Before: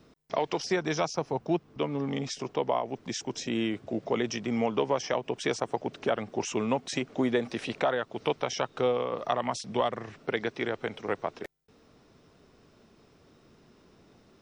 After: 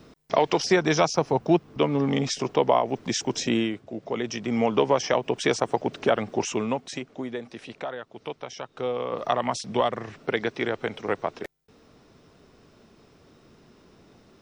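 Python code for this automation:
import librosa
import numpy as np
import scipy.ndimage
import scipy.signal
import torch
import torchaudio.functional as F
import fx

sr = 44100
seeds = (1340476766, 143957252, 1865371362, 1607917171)

y = fx.gain(x, sr, db=fx.line((3.52, 7.5), (3.86, -4.0), (4.75, 6.0), (6.33, 6.0), (7.25, -6.5), (8.65, -6.5), (9.2, 4.0)))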